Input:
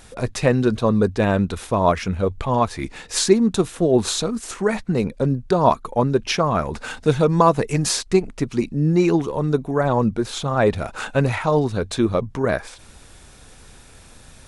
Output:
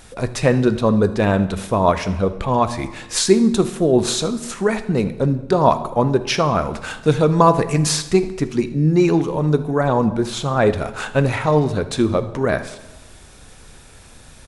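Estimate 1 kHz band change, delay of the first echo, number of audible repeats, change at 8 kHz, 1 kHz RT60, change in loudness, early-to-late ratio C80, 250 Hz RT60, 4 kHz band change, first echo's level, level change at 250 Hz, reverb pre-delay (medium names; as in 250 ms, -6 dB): +2.0 dB, 78 ms, 1, +1.5 dB, 1.1 s, +2.0 dB, 16.0 dB, 1.2 s, +2.0 dB, -20.0 dB, +2.0 dB, 13 ms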